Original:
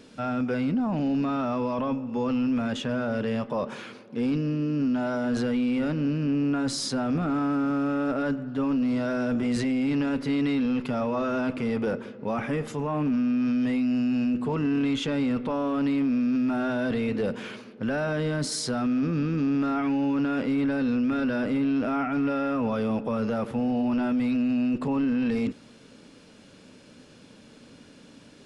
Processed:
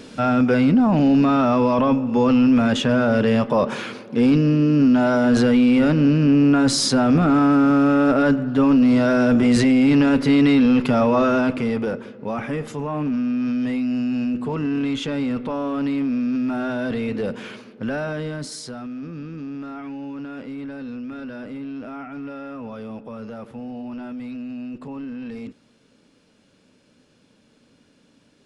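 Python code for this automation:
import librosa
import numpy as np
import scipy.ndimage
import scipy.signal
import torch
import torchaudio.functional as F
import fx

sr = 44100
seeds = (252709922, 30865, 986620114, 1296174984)

y = fx.gain(x, sr, db=fx.line((11.23, 10.0), (11.95, 2.0), (17.94, 2.0), (18.89, -7.5)))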